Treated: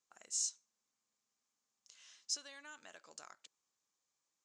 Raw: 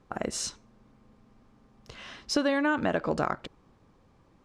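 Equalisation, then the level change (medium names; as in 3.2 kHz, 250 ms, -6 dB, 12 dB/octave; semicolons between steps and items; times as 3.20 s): band-pass filter 6.9 kHz, Q 3.9; +1.5 dB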